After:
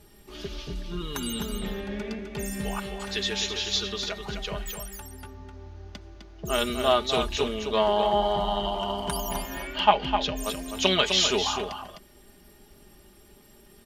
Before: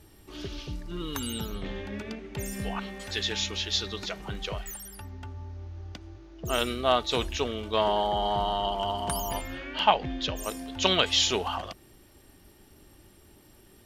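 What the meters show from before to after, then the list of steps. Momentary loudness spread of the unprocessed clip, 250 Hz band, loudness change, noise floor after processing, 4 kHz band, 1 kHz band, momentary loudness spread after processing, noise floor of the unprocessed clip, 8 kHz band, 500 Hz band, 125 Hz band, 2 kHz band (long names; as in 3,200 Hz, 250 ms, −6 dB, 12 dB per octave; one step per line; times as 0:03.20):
17 LU, +2.5 dB, +2.0 dB, −54 dBFS, +1.5 dB, +1.5 dB, 19 LU, −56 dBFS, +2.0 dB, +3.0 dB, −0.5 dB, +2.0 dB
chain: comb filter 4.9 ms, depth 56%
single-tap delay 256 ms −7 dB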